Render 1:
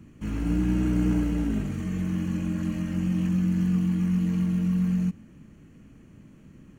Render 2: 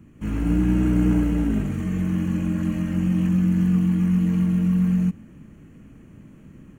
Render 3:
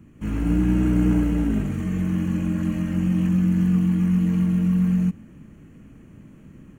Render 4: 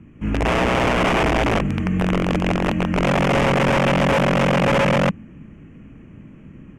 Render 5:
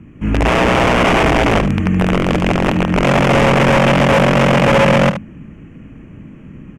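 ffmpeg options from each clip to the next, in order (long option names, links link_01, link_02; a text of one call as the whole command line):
ffmpeg -i in.wav -af "equalizer=frequency=4800:width_type=o:width=0.97:gain=-7.5,dynaudnorm=framelen=130:gausssize=3:maxgain=4.5dB" out.wav
ffmpeg -i in.wav -af anull out.wav
ffmpeg -i in.wav -af "aeval=exprs='(mod(7.08*val(0)+1,2)-1)/7.08':channel_layout=same,lowpass=2900,aexciter=amount=1.5:drive=2.5:freq=2200,volume=4dB" out.wav
ffmpeg -i in.wav -af "aecho=1:1:75:0.299,volume=5.5dB" out.wav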